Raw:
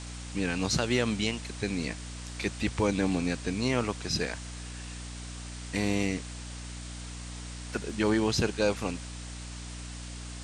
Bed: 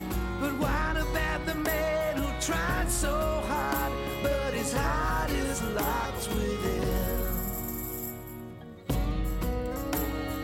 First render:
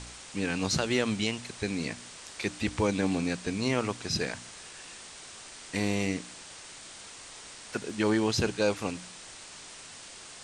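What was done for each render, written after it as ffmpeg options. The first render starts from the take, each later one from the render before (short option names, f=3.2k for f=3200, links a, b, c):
-af "bandreject=f=60:t=h:w=4,bandreject=f=120:t=h:w=4,bandreject=f=180:t=h:w=4,bandreject=f=240:t=h:w=4,bandreject=f=300:t=h:w=4"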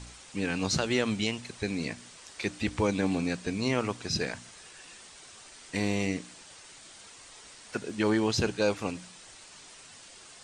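-af "afftdn=nr=6:nf=-47"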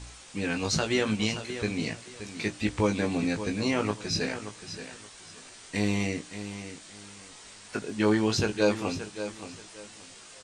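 -filter_complex "[0:a]asplit=2[a][b];[b]adelay=19,volume=-5.5dB[c];[a][c]amix=inputs=2:normalize=0,asplit=2[d][e];[e]aecho=0:1:576|1152|1728:0.282|0.0676|0.0162[f];[d][f]amix=inputs=2:normalize=0"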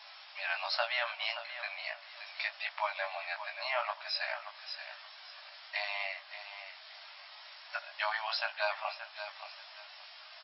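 -af "afftfilt=real='re*between(b*sr/4096,580,5500)':imag='im*between(b*sr/4096,580,5500)':win_size=4096:overlap=0.75,adynamicequalizer=threshold=0.00501:dfrequency=2800:dqfactor=0.7:tfrequency=2800:tqfactor=0.7:attack=5:release=100:ratio=0.375:range=3.5:mode=cutabove:tftype=highshelf"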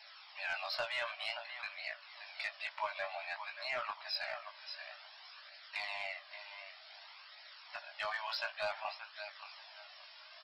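-af "asoftclip=type=tanh:threshold=-23.5dB,flanger=delay=0.4:depth=1.7:regen=-26:speed=0.54:shape=triangular"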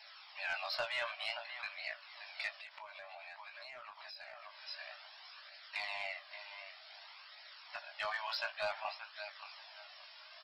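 -filter_complex "[0:a]asettb=1/sr,asplit=3[a][b][c];[a]atrim=end=2.554[d];[b]atrim=start=2.55:end=4.57,asetpts=PTS-STARTPTS,afade=t=in:d=0.004:c=qsin,afade=t=out:st=2.016:d=0.004:c=qsin,acompressor=threshold=-47dB:ratio=8:attack=3.2:release=140:knee=1:detection=peak[e];[c]atrim=start=4.566[f];[d][e]acrossfade=d=0.004:c1=hsin:c2=qsin[g];[g][f]acrossfade=d=0.004:c1=qsin:c2=hsin"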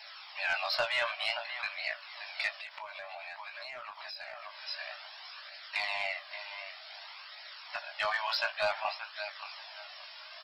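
-af "volume=7dB"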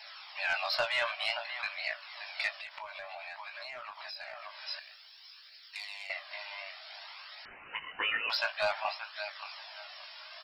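-filter_complex "[0:a]asettb=1/sr,asplit=3[a][b][c];[a]atrim=end=2.564[d];[b]atrim=start=2.56:end=3.29,asetpts=PTS-STARTPTS,afade=t=in:d=0.004:c=qsin,afade=t=out:st=0.726:d=0.004:c=qsin,lowshelf=f=78:g=11.5[e];[c]atrim=start=3.286[f];[d][e]acrossfade=d=0.004:c1=hsin:c2=qsin[g];[g][f]acrossfade=d=0.004:c1=qsin:c2=hsin,asettb=1/sr,asplit=3[h][i][j];[h]atrim=end=4.794[k];[i]atrim=start=4.79:end=6.1,asetpts=PTS-STARTPTS,afade=t=in:d=0.004:c=qsin,afade=t=out:st=1.306:d=0.004:c=qsin,aderivative[l];[j]atrim=start=6.096[m];[k][l]acrossfade=d=0.004:c1=hsin:c2=qsin[n];[n][m]acrossfade=d=0.004:c1=qsin:c2=hsin,asettb=1/sr,asplit=3[o][p][q];[o]atrim=end=7.454[r];[p]atrim=start=7.45:end=8.3,asetpts=PTS-STARTPTS,afade=t=in:d=0.004:c=qsin,afade=t=out:st=0.846:d=0.004:c=qsin,lowpass=f=3.1k:t=q:w=0.5098,lowpass=f=3.1k:t=q:w=0.6013,lowpass=f=3.1k:t=q:w=0.9,lowpass=f=3.1k:t=q:w=2.563,afreqshift=-3600[s];[q]atrim=start=8.296[t];[r][s]acrossfade=d=0.004:c1=hsin:c2=qsin[u];[u][t]acrossfade=d=0.004:c1=qsin:c2=hsin"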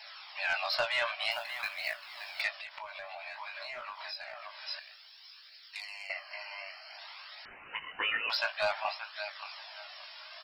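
-filter_complex "[0:a]asettb=1/sr,asplit=3[a][b][c];[a]atrim=end=1.314[d];[b]atrim=start=1.31:end=2.42,asetpts=PTS-STARTPTS,afade=t=in:d=0.004:c=qsin,afade=t=out:st=1.106:d=0.004:c=qsin,acrusher=bits=4:mode=log:mix=0:aa=0.000001[e];[c]atrim=start=2.416[f];[d][e]acrossfade=d=0.004:c1=hsin:c2=qsin[g];[g][f]acrossfade=d=0.004:c1=qsin:c2=hsin,asettb=1/sr,asplit=3[h][i][j];[h]atrim=end=3.244[k];[i]atrim=start=3.24:end=4.16,asetpts=PTS-STARTPTS,afade=t=in:d=0.004:c=qsin,afade=t=out:st=0.916:d=0.004:c=qsin,asplit=2[l][m];[m]adelay=21,volume=-3dB[n];[l][n]amix=inputs=2:normalize=0,atrim=end_sample=40572[o];[j]atrim=start=4.156[p];[k][o]acrossfade=d=0.004:c1=hsin:c2=qsin[q];[q][p]acrossfade=d=0.004:c1=qsin:c2=hsin,asplit=3[r][s][t];[r]afade=t=out:st=5.8:d=0.02[u];[s]asuperstop=centerf=3600:order=12:qfactor=3.8,afade=t=in:st=5.8:d=0.02,afade=t=out:st=6.97:d=0.02[v];[t]afade=t=in:st=6.97:d=0.02[w];[u][v][w]amix=inputs=3:normalize=0"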